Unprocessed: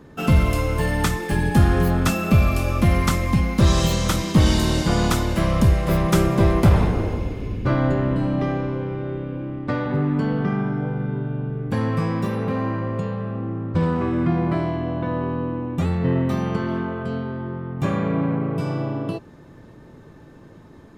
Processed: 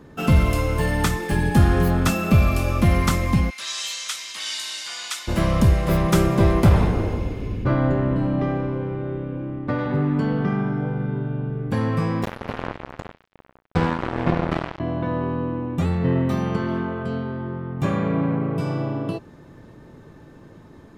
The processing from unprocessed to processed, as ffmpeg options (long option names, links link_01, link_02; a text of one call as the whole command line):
ffmpeg -i in.wav -filter_complex "[0:a]asplit=3[link_01][link_02][link_03];[link_01]afade=type=out:start_time=3.49:duration=0.02[link_04];[link_02]asuperpass=centerf=4900:order=4:qfactor=0.58,afade=type=in:start_time=3.49:duration=0.02,afade=type=out:start_time=5.27:duration=0.02[link_05];[link_03]afade=type=in:start_time=5.27:duration=0.02[link_06];[link_04][link_05][link_06]amix=inputs=3:normalize=0,asettb=1/sr,asplit=3[link_07][link_08][link_09];[link_07]atrim=end=7.644[link_10];[link_08]atrim=start=7.64:end=9.79,asetpts=PTS-STARTPTS,afade=type=in:duration=0.004:curve=qsin,afade=type=out:start_time=2.146:duration=0.004:curve=qsin,highshelf=frequency=3600:gain=-9.5[link_11];[link_09]atrim=start=9.786[link_12];[link_10][link_11]acrossfade=duration=0.004:curve1=hsin:curve2=qsin[link_13];[link_13][link_12]acrossfade=duration=0.004:curve1=qsin:curve2=hsin,asettb=1/sr,asplit=3[link_14][link_15][link_16];[link_14]atrim=end=12.234[link_17];[link_15]atrim=start=12.23:end=14.8,asetpts=PTS-STARTPTS,afade=type=in:duration=0.004:curve=qsin,afade=type=out:start_time=2.566:duration=0.004:curve=qsin,acrusher=bits=2:mix=0:aa=0.5[link_18];[link_16]atrim=start=14.796[link_19];[link_17][link_18]acrossfade=duration=0.004:curve1=hsin:curve2=qsin[link_20];[link_20][link_19]acrossfade=duration=0.004:curve1=qsin:curve2=hsin" out.wav